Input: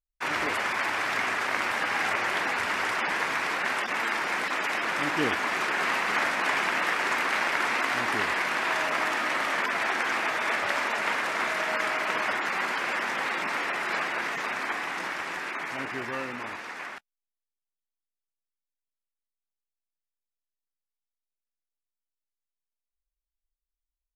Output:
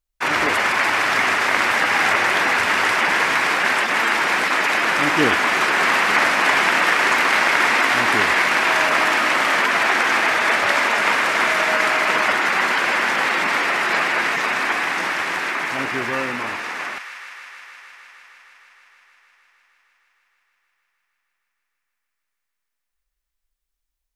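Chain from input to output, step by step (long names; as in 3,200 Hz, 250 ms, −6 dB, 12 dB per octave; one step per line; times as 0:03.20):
delay with a high-pass on its return 155 ms, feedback 84%, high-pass 1,500 Hz, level −9 dB
level +9 dB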